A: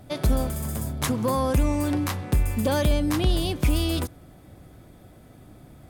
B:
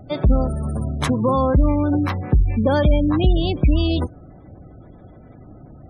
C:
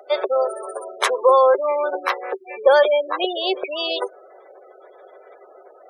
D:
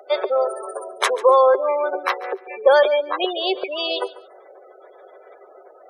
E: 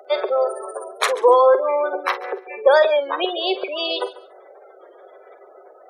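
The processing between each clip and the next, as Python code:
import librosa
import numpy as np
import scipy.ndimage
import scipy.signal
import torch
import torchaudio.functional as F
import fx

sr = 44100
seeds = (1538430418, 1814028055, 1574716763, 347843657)

y1 = fx.high_shelf(x, sr, hz=5800.0, db=-8.0)
y1 = fx.spec_gate(y1, sr, threshold_db=-25, keep='strong')
y1 = F.gain(torch.from_numpy(y1), 6.0).numpy()
y2 = scipy.signal.sosfilt(scipy.signal.cheby1(6, 3, 380.0, 'highpass', fs=sr, output='sos'), y1)
y2 = F.gain(torch.from_numpy(y2), 7.5).numpy()
y3 = fx.echo_feedback(y2, sr, ms=142, feedback_pct=22, wet_db=-18.5)
y4 = fx.doubler(y3, sr, ms=48.0, db=-12.0)
y4 = fx.record_warp(y4, sr, rpm=33.33, depth_cents=100.0)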